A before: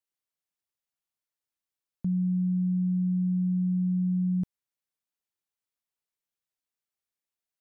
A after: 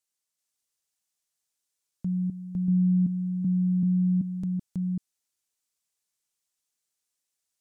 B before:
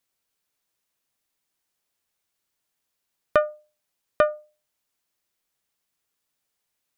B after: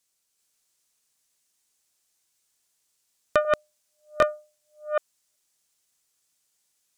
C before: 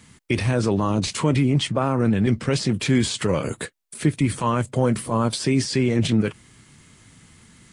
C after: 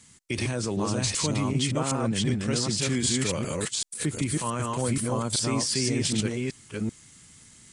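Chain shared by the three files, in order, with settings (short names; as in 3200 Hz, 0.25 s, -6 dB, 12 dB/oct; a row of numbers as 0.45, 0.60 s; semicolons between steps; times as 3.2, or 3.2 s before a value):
reverse delay 0.383 s, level -1 dB; bell 7400 Hz +12 dB 1.7 oct; match loudness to -27 LUFS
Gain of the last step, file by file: -1.0, -2.5, -9.0 dB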